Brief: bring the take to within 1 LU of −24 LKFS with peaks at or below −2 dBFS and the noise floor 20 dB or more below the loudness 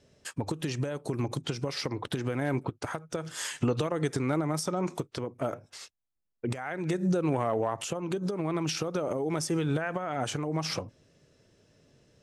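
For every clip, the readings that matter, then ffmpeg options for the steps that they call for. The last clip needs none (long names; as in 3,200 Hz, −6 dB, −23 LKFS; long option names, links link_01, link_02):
integrated loudness −31.5 LKFS; sample peak −15.5 dBFS; target loudness −24.0 LKFS
→ -af "volume=7.5dB"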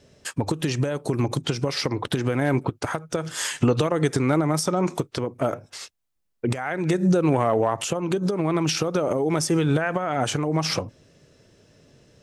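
integrated loudness −24.0 LKFS; sample peak −8.0 dBFS; background noise floor −65 dBFS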